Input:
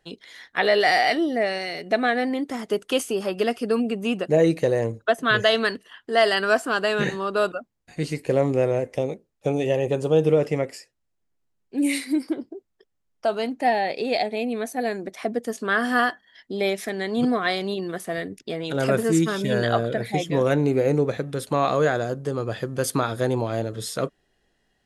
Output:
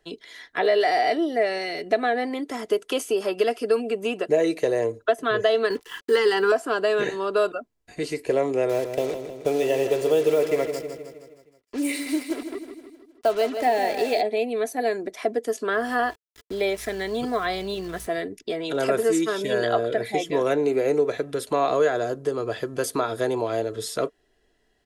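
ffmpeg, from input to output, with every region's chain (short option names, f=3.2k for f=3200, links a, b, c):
-filter_complex "[0:a]asettb=1/sr,asplit=3[a][b][c];[a]atrim=end=5.704[d];[b]atrim=start=5.7:end=6.52,asetpts=PTS-STARTPTS,afade=t=in:d=0.004:c=qsin,afade=t=out:st=0.816:d=0.004:c=qsin,acontrast=85,acrusher=bits=6:mix=0:aa=0.5,asuperstop=centerf=640:order=12:qfactor=3.6[e];[c]atrim=start=6.516[f];[d][e]acrossfade=d=0.004:c1=hsin:c2=qsin[g];[g][f]acrossfade=d=0.004:c1=qsin:c2=hsin,asettb=1/sr,asplit=3[h][i][j];[h]atrim=end=8.694[k];[i]atrim=start=8.69:end=14.21,asetpts=PTS-STARTPTS,afade=t=in:d=0.004:c=qsin,afade=t=out:st=5.516:d=0.004:c=qsin,acrusher=bits=5:mix=0:aa=0.5,aecho=1:1:157|314|471|628|785|942:0.335|0.178|0.0941|0.0499|0.0264|0.014,atrim=end_sample=243432[l];[j]atrim=start=14.206[m];[k][l]acrossfade=d=0.004:c1=hsin:c2=qsin[n];[n][m]acrossfade=d=0.004:c1=qsin:c2=hsin,asettb=1/sr,asplit=3[o][p][q];[o]atrim=end=15.734[r];[p]atrim=start=15.73:end=18.07,asetpts=PTS-STARTPTS,afade=t=in:d=0.004:c=qsin,afade=t=out:st=2.336:d=0.004:c=qsin,aeval=exprs='val(0)+0.00158*(sin(2*PI*60*n/s)+sin(2*PI*2*60*n/s)/2+sin(2*PI*3*60*n/s)/3+sin(2*PI*4*60*n/s)/4+sin(2*PI*5*60*n/s)/5)':c=same,asubboost=boost=12:cutoff=120,aeval=exprs='val(0)*gte(abs(val(0)),0.01)':c=same[s];[q]atrim=start=18.066[t];[r][s]acrossfade=d=0.004:c1=hsin:c2=qsin[u];[u][t]acrossfade=d=0.004:c1=qsin:c2=hsin,equalizer=f=450:t=o:w=0.22:g=9,aecho=1:1:3:0.41,acrossover=split=350|1000[v][w][x];[v]acompressor=threshold=-36dB:ratio=4[y];[w]acompressor=threshold=-18dB:ratio=4[z];[x]acompressor=threshold=-29dB:ratio=4[aa];[y][z][aa]amix=inputs=3:normalize=0"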